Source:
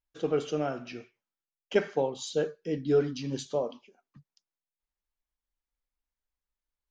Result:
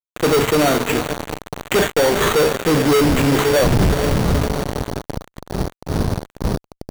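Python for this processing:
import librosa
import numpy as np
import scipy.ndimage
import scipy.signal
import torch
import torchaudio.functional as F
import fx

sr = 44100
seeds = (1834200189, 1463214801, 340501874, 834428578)

y = fx.dmg_wind(x, sr, seeds[0], corner_hz=150.0, level_db=-38.0)
y = fx.echo_diffused(y, sr, ms=455, feedback_pct=64, wet_db=-14.5)
y = fx.fuzz(y, sr, gain_db=45.0, gate_db=-40.0)
y = fx.sample_hold(y, sr, seeds[1], rate_hz=5100.0, jitter_pct=0)
y = y * librosa.db_to_amplitude(1.0)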